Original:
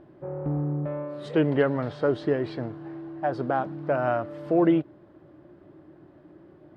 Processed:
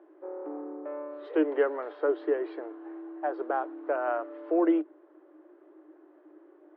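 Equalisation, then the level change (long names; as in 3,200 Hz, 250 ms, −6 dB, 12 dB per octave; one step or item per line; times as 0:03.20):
Chebyshev high-pass with heavy ripple 300 Hz, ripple 3 dB
high-frequency loss of the air 430 metres
0.0 dB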